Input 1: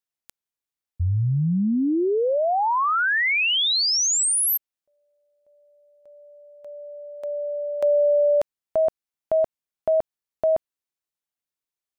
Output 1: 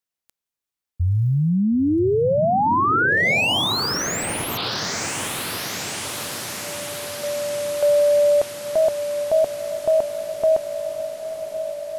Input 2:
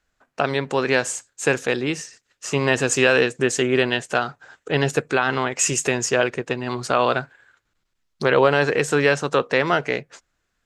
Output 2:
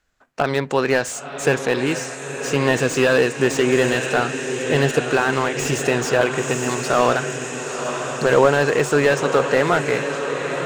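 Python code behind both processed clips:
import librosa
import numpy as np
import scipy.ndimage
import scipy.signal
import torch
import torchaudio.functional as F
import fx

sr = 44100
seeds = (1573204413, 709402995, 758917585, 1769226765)

y = fx.echo_diffused(x, sr, ms=971, feedback_pct=67, wet_db=-9)
y = fx.slew_limit(y, sr, full_power_hz=220.0)
y = y * 10.0 ** (2.5 / 20.0)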